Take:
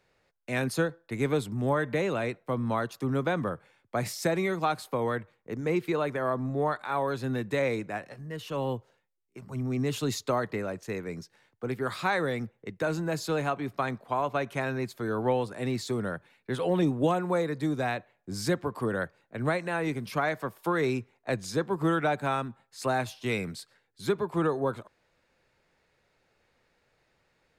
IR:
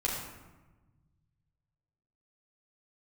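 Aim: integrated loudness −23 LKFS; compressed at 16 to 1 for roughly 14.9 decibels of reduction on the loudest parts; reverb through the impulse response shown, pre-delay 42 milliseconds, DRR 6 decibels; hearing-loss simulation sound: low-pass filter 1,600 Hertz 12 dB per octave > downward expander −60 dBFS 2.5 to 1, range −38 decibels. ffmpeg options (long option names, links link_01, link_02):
-filter_complex "[0:a]acompressor=threshold=-36dB:ratio=16,asplit=2[link_01][link_02];[1:a]atrim=start_sample=2205,adelay=42[link_03];[link_02][link_03]afir=irnorm=-1:irlink=0,volume=-12.5dB[link_04];[link_01][link_04]amix=inputs=2:normalize=0,lowpass=1600,agate=range=-38dB:threshold=-60dB:ratio=2.5,volume=18dB"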